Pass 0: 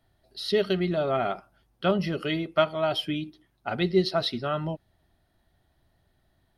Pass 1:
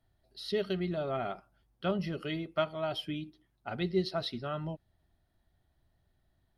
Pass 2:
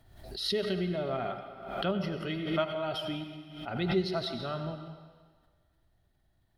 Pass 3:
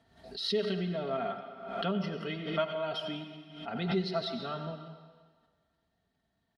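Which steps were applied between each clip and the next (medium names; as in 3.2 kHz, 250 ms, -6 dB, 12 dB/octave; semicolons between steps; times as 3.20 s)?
bass shelf 140 Hz +6 dB; trim -8.5 dB
reverberation RT60 1.6 s, pre-delay 76 ms, DRR 7 dB; swell ahead of each attack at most 66 dB/s
band-pass 110–6500 Hz; comb 4.4 ms, depth 56%; trim -2 dB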